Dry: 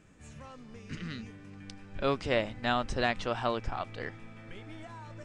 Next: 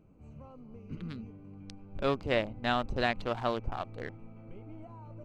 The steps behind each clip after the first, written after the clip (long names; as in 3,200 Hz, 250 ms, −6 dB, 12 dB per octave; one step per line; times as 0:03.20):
adaptive Wiener filter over 25 samples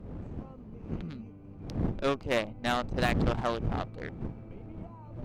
wind on the microphone 200 Hz −37 dBFS
harmonic generator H 8 −21 dB, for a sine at −13 dBFS